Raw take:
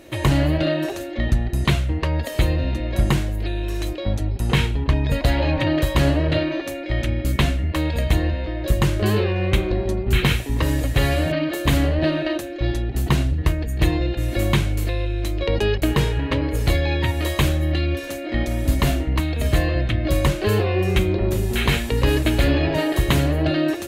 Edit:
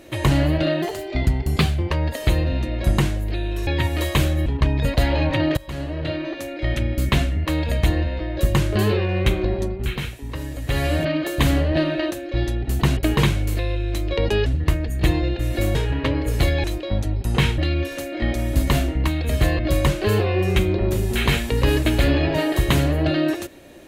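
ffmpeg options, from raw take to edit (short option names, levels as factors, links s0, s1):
-filter_complex "[0:a]asplit=15[s0][s1][s2][s3][s4][s5][s6][s7][s8][s9][s10][s11][s12][s13][s14];[s0]atrim=end=0.824[s15];[s1]atrim=start=0.82:end=2.03,asetpts=PTS-STARTPTS,asetrate=48951,aresample=44100[s16];[s2]atrim=start=2.026:end=3.792[s17];[s3]atrim=start=16.908:end=17.702[s18];[s4]atrim=start=4.728:end=5.84,asetpts=PTS-STARTPTS,afade=t=out:st=1.108:d=0.004:c=hsin:silence=0.0891251[s19];[s5]atrim=start=5.84:end=10.22,asetpts=PTS-STARTPTS,afade=t=in:d=1.09:silence=0.0891251,afade=t=out:st=3.98:d=0.4:silence=0.334965[s20];[s6]atrim=start=10.22:end=10.82,asetpts=PTS-STARTPTS,volume=0.335[s21];[s7]atrim=start=10.82:end=13.242,asetpts=PTS-STARTPTS,afade=t=in:d=0.4:silence=0.334965[s22];[s8]atrim=start=15.758:end=16.022[s23];[s9]atrim=start=14.528:end=15.762[s24];[s10]atrim=start=13.238:end=14.532[s25];[s11]atrim=start=16.018:end=16.912[s26];[s12]atrim=start=3.788:end=4.732[s27];[s13]atrim=start=17.698:end=19.712[s28];[s14]atrim=start=19.988[s29];[s15][s16]acrossfade=d=0.004:c1=hsin:c2=hsin[s30];[s30][s17]acrossfade=d=0.004:c1=hsin:c2=hsin[s31];[s31][s18]acrossfade=d=0.004:c1=hsin:c2=hsin[s32];[s19][s20][s21][s22]concat=n=4:v=0:a=1[s33];[s32][s33]acrossfade=d=0.004:c1=hsin:c2=hsin[s34];[s34][s23]acrossfade=d=0.004:c1=hsin:c2=hsin[s35];[s35][s24]acrossfade=d=0.004:c1=hsin:c2=hsin[s36];[s36][s25]acrossfade=d=0.004:c1=hsin:c2=hsin[s37];[s37][s26]acrossfade=d=0.004:c1=hsin:c2=hsin[s38];[s38][s27]acrossfade=d=0.004:c1=hsin:c2=hsin[s39];[s39][s28]acrossfade=d=0.004:c1=hsin:c2=hsin[s40];[s40][s29]acrossfade=d=0.004:c1=hsin:c2=hsin"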